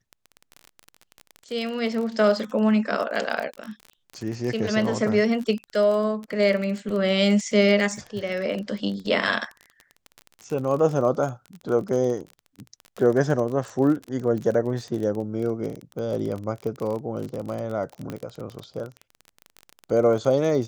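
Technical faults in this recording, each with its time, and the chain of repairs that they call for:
crackle 30 per s -29 dBFS
18.10 s: pop -19 dBFS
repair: de-click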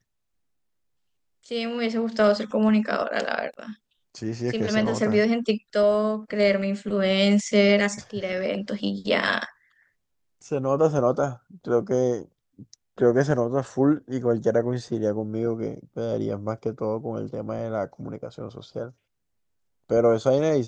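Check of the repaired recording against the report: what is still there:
nothing left

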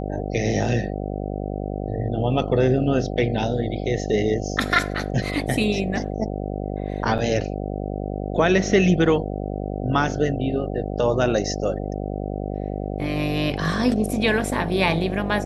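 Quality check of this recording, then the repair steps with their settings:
buzz 50 Hz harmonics 15 -28 dBFS
7.18–7.19 s: dropout 6.9 ms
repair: de-hum 50 Hz, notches 15; interpolate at 7.18 s, 6.9 ms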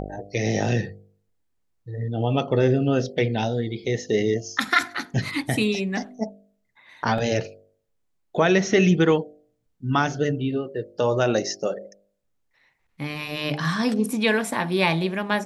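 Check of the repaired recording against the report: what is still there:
nothing left

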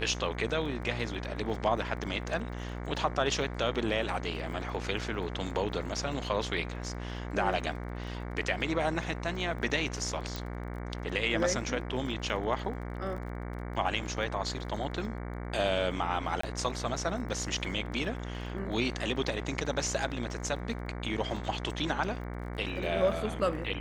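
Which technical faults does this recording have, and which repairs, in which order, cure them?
buzz 60 Hz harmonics 38 -38 dBFS
crackle 26 per s -42 dBFS
10.36 s: pop
16.41–16.43 s: dropout 24 ms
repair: de-click; de-hum 60 Hz, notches 38; interpolate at 16.41 s, 24 ms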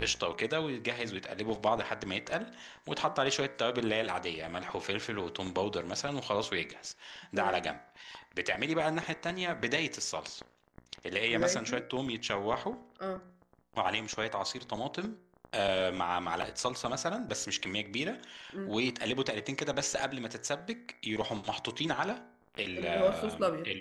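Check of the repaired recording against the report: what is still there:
nothing left

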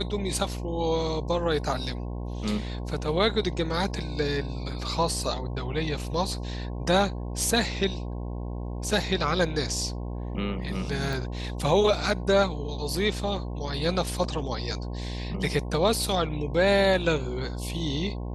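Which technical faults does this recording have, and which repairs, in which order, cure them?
buzz 60 Hz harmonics 18 -33 dBFS
11.13 s: pop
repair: de-click; de-hum 60 Hz, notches 18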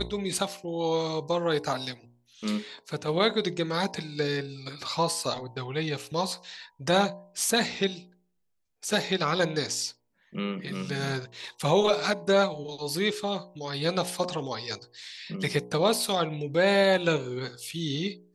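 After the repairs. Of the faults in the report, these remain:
11.13 s: pop

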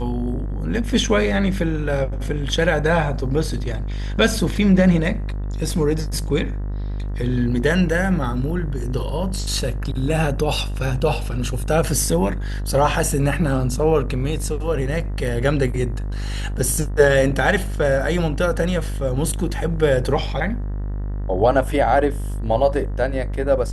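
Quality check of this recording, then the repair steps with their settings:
buzz 50 Hz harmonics 39 -25 dBFS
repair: de-hum 50 Hz, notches 39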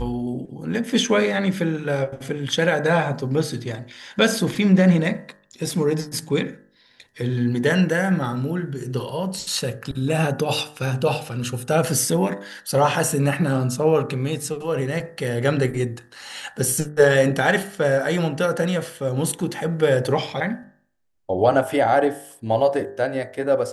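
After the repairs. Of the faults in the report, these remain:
nothing left

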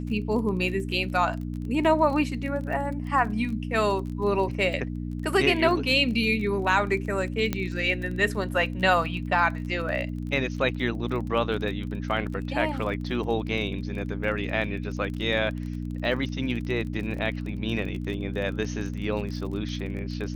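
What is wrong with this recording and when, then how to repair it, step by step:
crackle 30 per s -34 dBFS
hum 60 Hz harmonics 5 -32 dBFS
7.53 s: pop -12 dBFS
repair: de-click; de-hum 60 Hz, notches 5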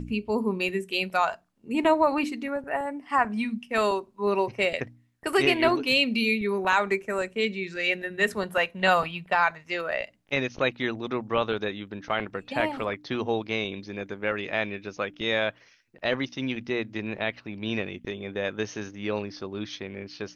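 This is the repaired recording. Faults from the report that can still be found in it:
nothing left

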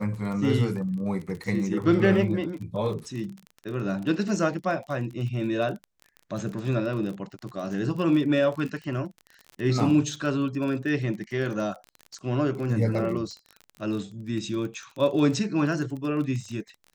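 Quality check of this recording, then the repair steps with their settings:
crackle 29 per s -33 dBFS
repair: de-click

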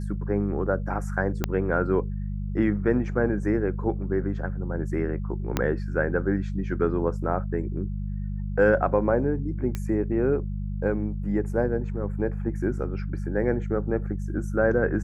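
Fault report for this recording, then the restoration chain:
hum 50 Hz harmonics 4 -30 dBFS
1.44 s: pop -10 dBFS
5.57 s: pop -8 dBFS
9.75 s: pop -16 dBFS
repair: de-click; de-hum 50 Hz, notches 4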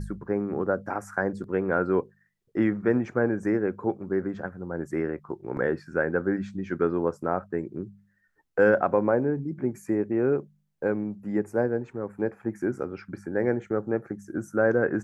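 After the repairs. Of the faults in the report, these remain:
1.44 s: pop
5.57 s: pop

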